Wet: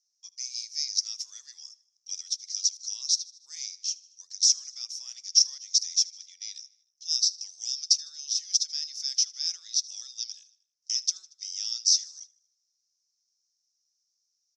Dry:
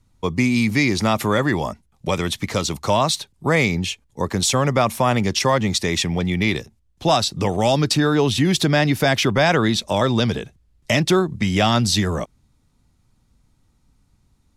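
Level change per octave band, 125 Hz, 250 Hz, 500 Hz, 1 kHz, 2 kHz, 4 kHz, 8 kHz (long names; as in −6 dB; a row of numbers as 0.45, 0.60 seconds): below −40 dB, below −40 dB, below −40 dB, below −40 dB, below −30 dB, −2.5 dB, +2.5 dB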